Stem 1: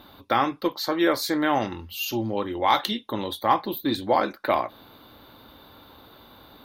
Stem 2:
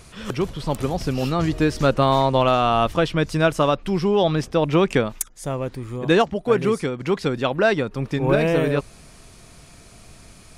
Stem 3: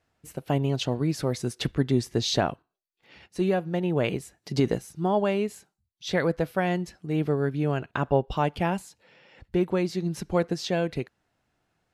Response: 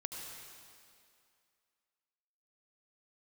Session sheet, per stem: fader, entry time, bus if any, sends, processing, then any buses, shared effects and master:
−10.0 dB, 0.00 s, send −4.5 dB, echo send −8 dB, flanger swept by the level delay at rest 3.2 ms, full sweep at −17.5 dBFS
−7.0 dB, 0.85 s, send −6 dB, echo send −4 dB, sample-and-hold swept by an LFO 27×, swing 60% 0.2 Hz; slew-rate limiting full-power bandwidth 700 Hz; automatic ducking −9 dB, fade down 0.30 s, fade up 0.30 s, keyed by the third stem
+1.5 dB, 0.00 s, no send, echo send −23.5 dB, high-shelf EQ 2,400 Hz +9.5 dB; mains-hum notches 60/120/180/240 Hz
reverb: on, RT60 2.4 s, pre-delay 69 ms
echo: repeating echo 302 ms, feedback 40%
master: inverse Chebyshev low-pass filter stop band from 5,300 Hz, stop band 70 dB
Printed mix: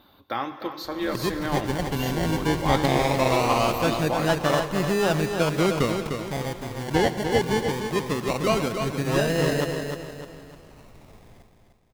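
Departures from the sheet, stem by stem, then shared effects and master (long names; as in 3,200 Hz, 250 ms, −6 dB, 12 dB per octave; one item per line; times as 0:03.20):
stem 1: missing flanger swept by the level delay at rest 3.2 ms, full sweep at −17.5 dBFS
stem 3: muted
master: missing inverse Chebyshev low-pass filter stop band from 5,300 Hz, stop band 70 dB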